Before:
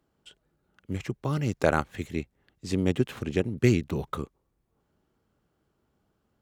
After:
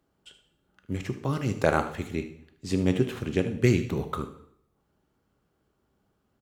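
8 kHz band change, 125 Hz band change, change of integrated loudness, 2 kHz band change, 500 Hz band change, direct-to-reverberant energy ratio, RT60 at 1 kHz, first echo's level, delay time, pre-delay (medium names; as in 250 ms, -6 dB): +0.5 dB, +0.5 dB, +0.5 dB, +0.5 dB, +1.0 dB, 7.0 dB, 0.70 s, -12.5 dB, 76 ms, 4 ms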